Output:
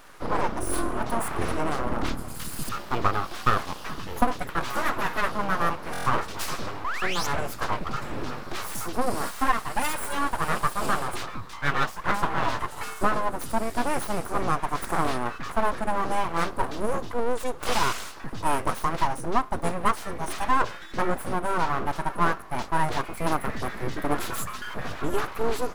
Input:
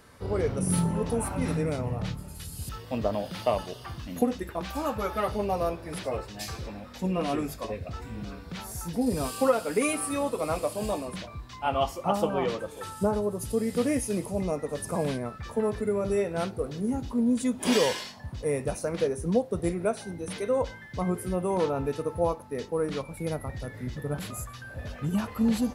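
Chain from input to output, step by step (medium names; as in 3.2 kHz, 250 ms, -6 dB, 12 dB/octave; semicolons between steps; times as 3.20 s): painted sound rise, 6.84–7.27 s, 460–6900 Hz -32 dBFS; full-wave rectifier; gain riding within 4 dB 0.5 s; peaking EQ 1.2 kHz +7 dB 0.99 oct; buffer glitch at 5.92 s, samples 1024, times 5; trim +3.5 dB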